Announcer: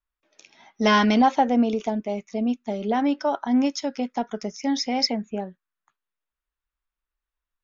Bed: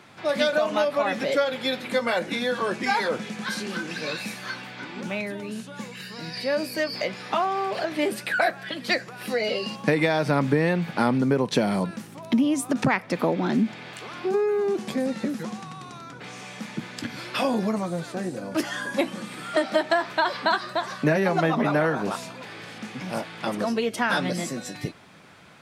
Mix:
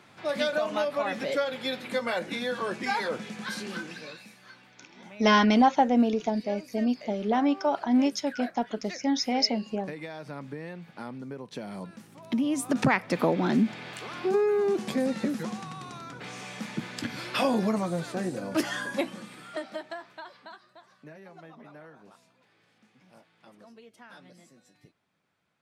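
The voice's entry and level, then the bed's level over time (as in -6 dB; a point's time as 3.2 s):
4.40 s, -2.0 dB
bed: 3.79 s -5 dB
4.28 s -17.5 dB
11.48 s -17.5 dB
12.78 s -1 dB
18.71 s -1 dB
20.69 s -26.5 dB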